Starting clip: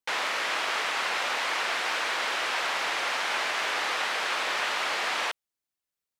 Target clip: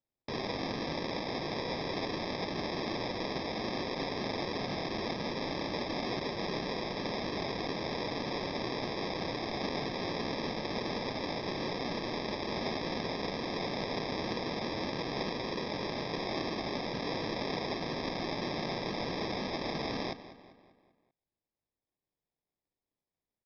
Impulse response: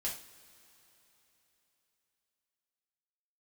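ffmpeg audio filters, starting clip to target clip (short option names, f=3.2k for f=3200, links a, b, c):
-filter_complex "[0:a]acrusher=samples=8:mix=1:aa=0.000001,equalizer=f=5.9k:w=7.6:g=8.5,asetrate=11642,aresample=44100,bass=f=250:g=1,treble=f=4k:g=8,asplit=2[a][b];[b]adelay=196,lowpass=f=4.7k:p=1,volume=-14dB,asplit=2[c][d];[d]adelay=196,lowpass=f=4.7k:p=1,volume=0.5,asplit=2[e][f];[f]adelay=196,lowpass=f=4.7k:p=1,volume=0.5,asplit=2[g][h];[h]adelay=196,lowpass=f=4.7k:p=1,volume=0.5,asplit=2[i][j];[j]adelay=196,lowpass=f=4.7k:p=1,volume=0.5[k];[c][e][g][i][k]amix=inputs=5:normalize=0[l];[a][l]amix=inputs=2:normalize=0,volume=-7.5dB"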